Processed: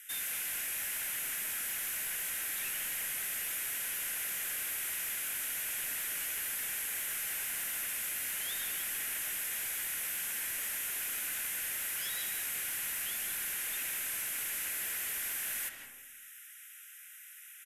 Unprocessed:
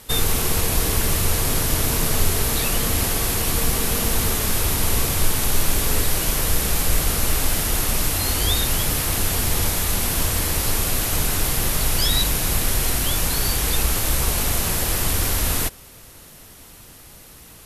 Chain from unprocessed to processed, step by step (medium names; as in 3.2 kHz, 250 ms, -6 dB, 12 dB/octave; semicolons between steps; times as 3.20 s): steep high-pass 1.4 kHz 96 dB/octave; static phaser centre 1.9 kHz, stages 4; saturation -31.5 dBFS, distortion -8 dB; on a send at -4 dB: reverberation RT60 1.0 s, pre-delay 115 ms; on the sum: resampled via 32 kHz; trim -3 dB